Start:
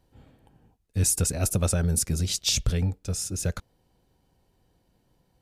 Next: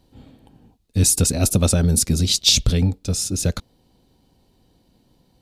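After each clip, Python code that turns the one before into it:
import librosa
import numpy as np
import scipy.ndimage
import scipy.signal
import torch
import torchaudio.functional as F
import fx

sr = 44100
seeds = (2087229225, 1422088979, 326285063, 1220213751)

y = fx.graphic_eq_15(x, sr, hz=(250, 1600, 4000), db=(7, -4, 7))
y = y * librosa.db_to_amplitude(6.0)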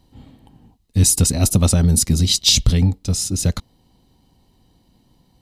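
y = x + 0.33 * np.pad(x, (int(1.0 * sr / 1000.0), 0))[:len(x)]
y = y * librosa.db_to_amplitude(1.0)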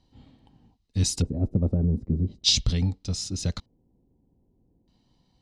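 y = fx.filter_lfo_lowpass(x, sr, shape='square', hz=0.41, low_hz=440.0, high_hz=5200.0, q=1.4)
y = y * librosa.db_to_amplitude(-9.0)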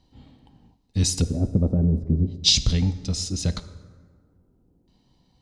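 y = fx.rev_plate(x, sr, seeds[0], rt60_s=1.7, hf_ratio=0.55, predelay_ms=0, drr_db=12.0)
y = y * librosa.db_to_amplitude(3.0)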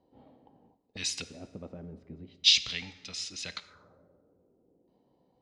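y = fx.auto_wah(x, sr, base_hz=490.0, top_hz=2400.0, q=2.0, full_db=-26.5, direction='up')
y = y * librosa.db_to_amplitude(5.0)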